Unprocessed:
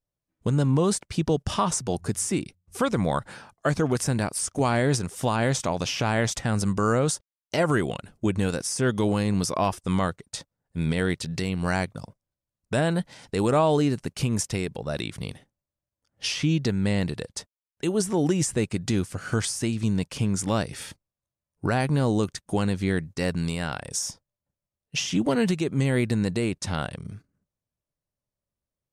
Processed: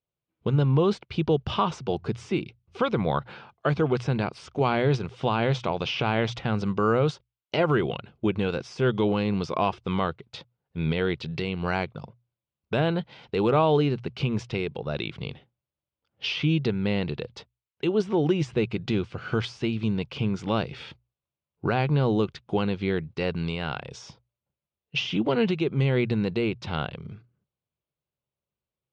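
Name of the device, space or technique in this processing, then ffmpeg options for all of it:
guitar cabinet: -af "highpass=89,equalizer=f=98:t=q:w=4:g=-8,equalizer=f=180:t=q:w=4:g=-7,equalizer=f=270:t=q:w=4:g=-10,equalizer=f=600:t=q:w=4:g=-5,equalizer=f=1800:t=q:w=4:g=-9,lowpass=f=3400:w=0.5412,lowpass=f=3400:w=1.3066,equalizer=f=1000:t=o:w=1.7:g=-4,bandreject=f=60:t=h:w=6,bandreject=f=120:t=h:w=6,volume=1.78"

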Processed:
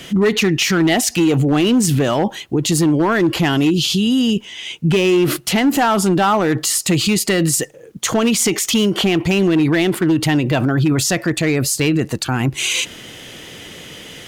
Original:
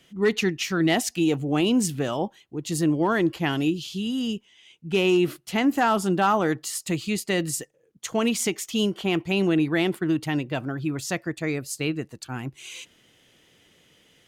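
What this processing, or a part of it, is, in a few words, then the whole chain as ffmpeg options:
loud club master: -af "acompressor=threshold=0.0562:ratio=2.5,asoftclip=type=hard:threshold=0.0794,alimiter=level_in=39.8:limit=0.891:release=50:level=0:latency=1,volume=0.376"

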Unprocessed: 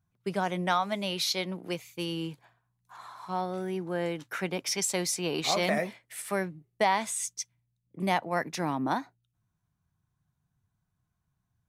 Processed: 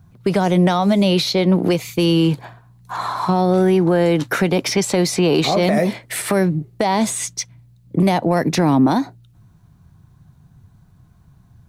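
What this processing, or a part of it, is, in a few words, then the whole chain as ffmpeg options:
mastering chain: -filter_complex "[0:a]equalizer=f=4200:t=o:w=0.39:g=4,acrossover=split=610|3600[s0][s1][s2];[s0]acompressor=threshold=0.0141:ratio=4[s3];[s1]acompressor=threshold=0.01:ratio=4[s4];[s2]acompressor=threshold=0.00794:ratio=4[s5];[s3][s4][s5]amix=inputs=3:normalize=0,acompressor=threshold=0.0126:ratio=2.5,asoftclip=type=tanh:threshold=0.0447,tiltshelf=f=890:g=5.5,alimiter=level_in=31.6:limit=0.891:release=50:level=0:latency=1,volume=0.473"

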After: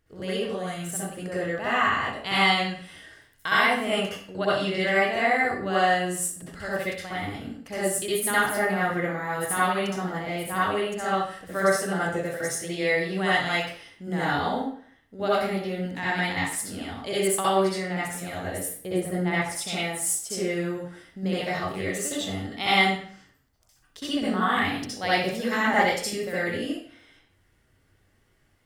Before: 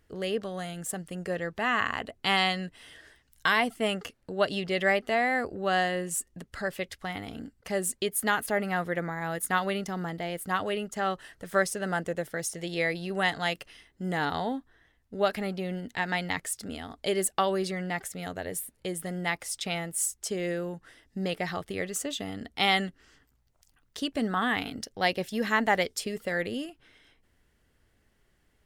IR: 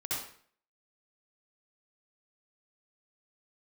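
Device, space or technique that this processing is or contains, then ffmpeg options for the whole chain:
bathroom: -filter_complex "[0:a]asettb=1/sr,asplit=3[s0][s1][s2];[s0]atrim=end=18.784[s3];[s1]atrim=start=18.78:end=19.5,asetpts=PTS-STARTPTS,afade=t=in:d=0.004:c=qsin,afade=t=out:st=0.716:d=0.004:c=qsin,tiltshelf=f=1400:g=5[s4];[s2]atrim=start=19.496[s5];[s3][s4]acrossfade=d=0.004:c1=hsin:c2=qsin[s6];[s6][s5]acrossfade=d=0.004:c1=qsin:c2=hsin[s7];[1:a]atrim=start_sample=2205[s8];[s7][s8]afir=irnorm=-1:irlink=0"

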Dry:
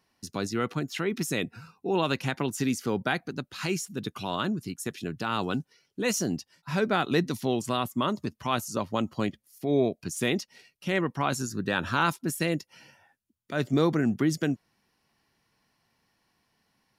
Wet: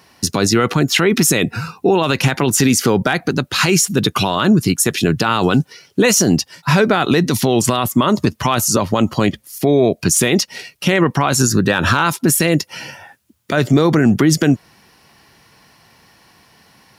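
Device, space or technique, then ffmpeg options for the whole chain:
mastering chain: -af "highpass=48,equalizer=f=240:t=o:w=0.77:g=-3,acompressor=threshold=0.0355:ratio=2,asoftclip=type=hard:threshold=0.133,alimiter=level_in=18.8:limit=0.891:release=50:level=0:latency=1,volume=0.708"

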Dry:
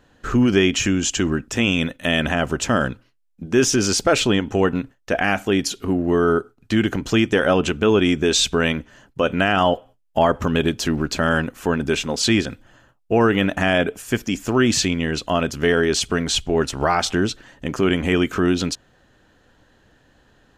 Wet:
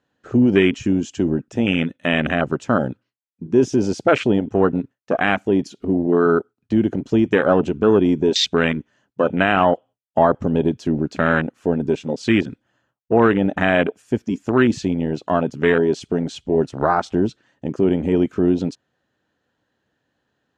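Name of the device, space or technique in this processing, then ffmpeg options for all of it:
over-cleaned archive recording: -af "highpass=110,lowpass=7500,afwtdn=0.0891,volume=1.26"

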